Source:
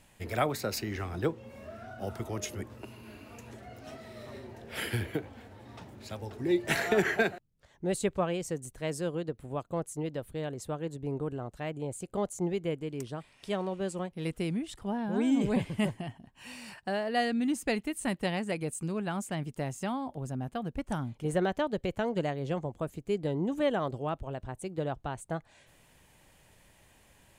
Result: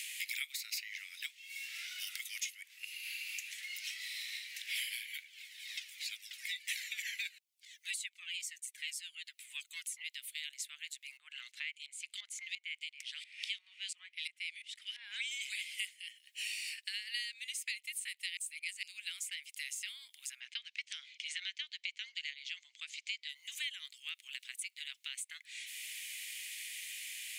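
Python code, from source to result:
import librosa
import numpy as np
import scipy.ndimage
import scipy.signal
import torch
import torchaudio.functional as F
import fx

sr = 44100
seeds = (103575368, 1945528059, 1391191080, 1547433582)

y = fx.comb_cascade(x, sr, direction='falling', hz=2.0, at=(5.22, 10.03), fade=0.02)
y = fx.filter_lfo_bandpass(y, sr, shape='saw_up', hz=2.9, low_hz=340.0, high_hz=4900.0, q=0.93, at=(11.17, 15.31))
y = fx.lowpass(y, sr, hz=6000.0, slope=24, at=(20.4, 23.29))
y = fx.edit(y, sr, fx.reverse_span(start_s=18.37, length_s=0.46), tone=tone)
y = scipy.signal.sosfilt(scipy.signal.cheby1(5, 1.0, 2100.0, 'highpass', fs=sr, output='sos'), y)
y = fx.band_squash(y, sr, depth_pct=100)
y = y * 10.0 ** (6.0 / 20.0)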